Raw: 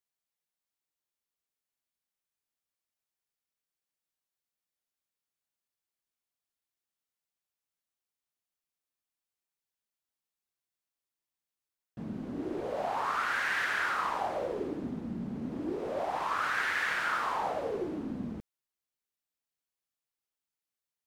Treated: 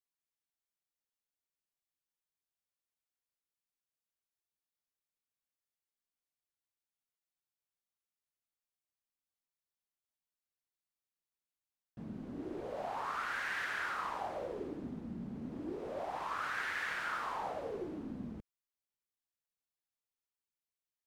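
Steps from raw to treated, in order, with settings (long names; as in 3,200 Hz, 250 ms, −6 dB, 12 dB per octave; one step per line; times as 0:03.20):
low-shelf EQ 90 Hz +5.5 dB
level −7 dB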